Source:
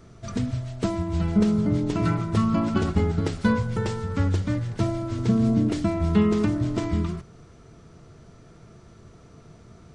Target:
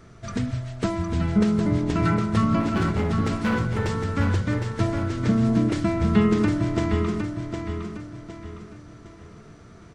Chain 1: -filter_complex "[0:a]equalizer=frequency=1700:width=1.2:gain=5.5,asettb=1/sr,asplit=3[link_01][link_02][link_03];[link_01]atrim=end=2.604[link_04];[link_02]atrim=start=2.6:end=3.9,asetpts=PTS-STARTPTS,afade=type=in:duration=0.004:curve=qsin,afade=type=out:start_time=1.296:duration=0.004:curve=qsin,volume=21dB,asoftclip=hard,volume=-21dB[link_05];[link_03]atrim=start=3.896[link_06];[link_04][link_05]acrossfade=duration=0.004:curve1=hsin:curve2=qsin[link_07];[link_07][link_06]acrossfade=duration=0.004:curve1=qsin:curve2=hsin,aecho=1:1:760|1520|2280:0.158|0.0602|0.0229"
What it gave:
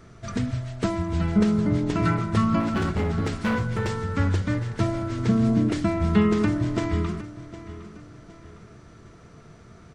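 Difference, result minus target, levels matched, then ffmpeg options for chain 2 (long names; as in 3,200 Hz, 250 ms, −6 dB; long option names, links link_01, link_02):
echo-to-direct −9.5 dB
-filter_complex "[0:a]equalizer=frequency=1700:width=1.2:gain=5.5,asettb=1/sr,asplit=3[link_01][link_02][link_03];[link_01]atrim=end=2.604[link_04];[link_02]atrim=start=2.6:end=3.9,asetpts=PTS-STARTPTS,afade=type=in:duration=0.004:curve=qsin,afade=type=out:start_time=1.296:duration=0.004:curve=qsin,volume=21dB,asoftclip=hard,volume=-21dB[link_05];[link_03]atrim=start=3.896[link_06];[link_04][link_05]acrossfade=duration=0.004:curve1=hsin:curve2=qsin[link_07];[link_07][link_06]acrossfade=duration=0.004:curve1=qsin:curve2=hsin,aecho=1:1:760|1520|2280|3040:0.473|0.18|0.0683|0.026"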